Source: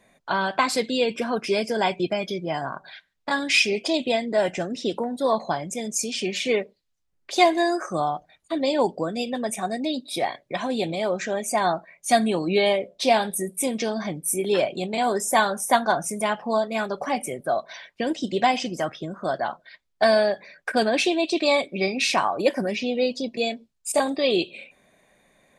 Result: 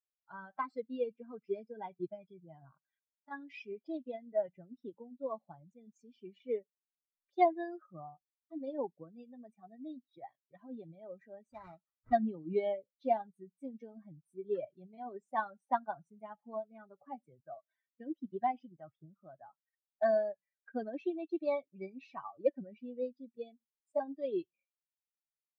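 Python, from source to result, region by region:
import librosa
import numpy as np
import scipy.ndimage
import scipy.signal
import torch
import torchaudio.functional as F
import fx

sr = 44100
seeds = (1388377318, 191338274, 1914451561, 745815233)

y = fx.chain(x, sr, fx.high_shelf(hz=7900.0, db=-4.0),
    fx.sample_hold(seeds[0], rate_hz=3100.0, jitter_pct=20),
    fx.notch(hz=740.0, q=6.8), at=(11.52, 12.13))
y = fx.bin_expand(y, sr, power=2.0)
y = scipy.signal.sosfilt(scipy.signal.butter(2, 1200.0, 'lowpass', fs=sr, output='sos'), y)
y = fx.upward_expand(y, sr, threshold_db=-36.0, expansion=1.5)
y = F.gain(torch.from_numpy(y), -5.0).numpy()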